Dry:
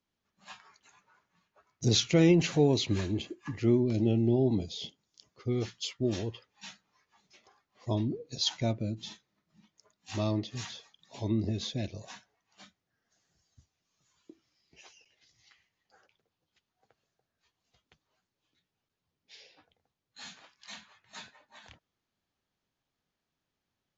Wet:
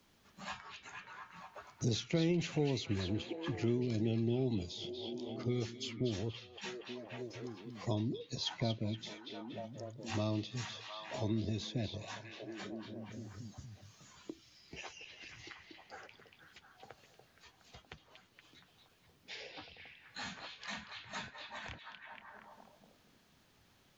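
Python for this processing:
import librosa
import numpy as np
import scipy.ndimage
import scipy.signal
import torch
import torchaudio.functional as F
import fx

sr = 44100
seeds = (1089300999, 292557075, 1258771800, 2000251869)

y = fx.echo_stepped(x, sr, ms=235, hz=3300.0, octaves=-0.7, feedback_pct=70, wet_db=-5.5)
y = fx.band_squash(y, sr, depth_pct=70)
y = y * librosa.db_to_amplitude(-4.5)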